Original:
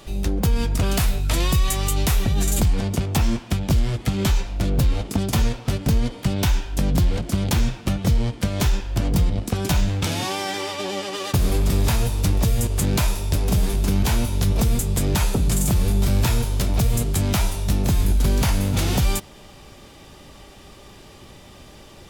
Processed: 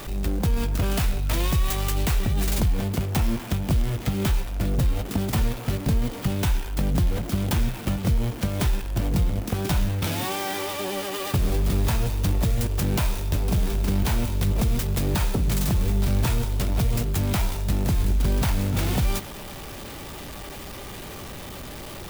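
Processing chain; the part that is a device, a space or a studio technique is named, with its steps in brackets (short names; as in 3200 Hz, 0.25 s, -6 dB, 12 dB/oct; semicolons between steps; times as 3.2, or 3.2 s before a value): early CD player with a faulty converter (zero-crossing step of -29 dBFS; clock jitter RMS 0.038 ms); gain -4 dB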